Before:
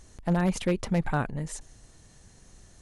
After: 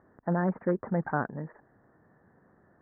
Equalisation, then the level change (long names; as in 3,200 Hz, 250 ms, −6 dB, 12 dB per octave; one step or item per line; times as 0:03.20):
high-pass filter 190 Hz 12 dB per octave
Butterworth low-pass 1,800 Hz 72 dB per octave
0.0 dB